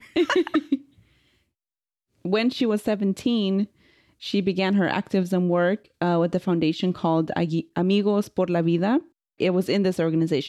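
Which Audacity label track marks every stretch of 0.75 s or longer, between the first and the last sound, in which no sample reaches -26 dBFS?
0.750000	2.250000	silence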